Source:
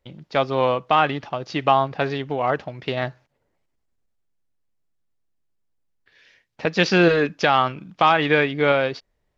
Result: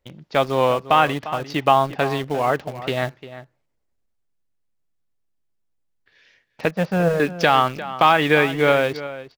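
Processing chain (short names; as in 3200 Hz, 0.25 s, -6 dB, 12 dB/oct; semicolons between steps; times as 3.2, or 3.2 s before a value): 6.71–7.2 EQ curve 170 Hz 0 dB, 330 Hz -16 dB, 610 Hz +3 dB, 5600 Hz -26 dB; in parallel at -9 dB: bit-crush 5-bit; on the sum: outdoor echo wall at 60 m, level -14 dB; gain -1 dB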